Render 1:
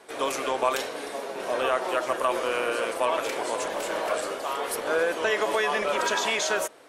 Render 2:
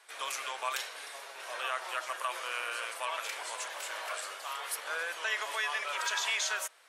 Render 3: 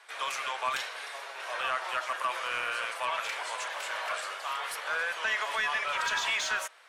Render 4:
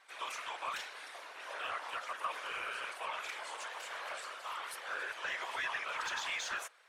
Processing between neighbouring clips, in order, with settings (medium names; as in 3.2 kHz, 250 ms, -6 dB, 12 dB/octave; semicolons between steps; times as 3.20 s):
high-pass 1.3 kHz 12 dB/octave; trim -3.5 dB
overdrive pedal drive 12 dB, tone 2.6 kHz, clips at -17.5 dBFS
whisper effect; trim -8 dB